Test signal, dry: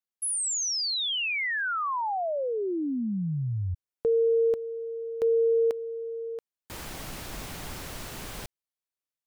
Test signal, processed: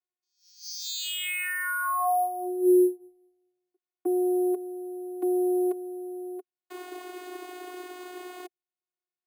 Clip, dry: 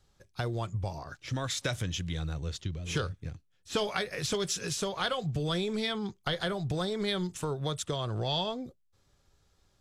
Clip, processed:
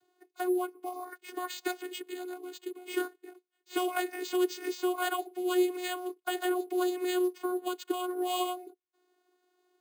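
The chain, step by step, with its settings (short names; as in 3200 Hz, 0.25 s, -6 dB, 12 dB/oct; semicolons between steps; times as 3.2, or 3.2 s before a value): vocoder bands 16, saw 362 Hz; careless resampling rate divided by 4×, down filtered, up hold; gain +1.5 dB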